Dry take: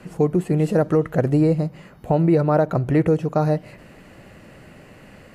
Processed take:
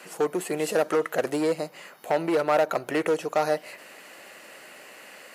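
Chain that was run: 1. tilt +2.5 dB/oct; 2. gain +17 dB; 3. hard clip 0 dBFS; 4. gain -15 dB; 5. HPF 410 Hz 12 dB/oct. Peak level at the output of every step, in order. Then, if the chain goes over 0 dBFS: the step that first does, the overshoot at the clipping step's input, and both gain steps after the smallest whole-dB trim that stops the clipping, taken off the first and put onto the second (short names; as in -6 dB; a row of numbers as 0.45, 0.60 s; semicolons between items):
-8.0, +9.0, 0.0, -15.0, -10.0 dBFS; step 2, 9.0 dB; step 2 +8 dB, step 4 -6 dB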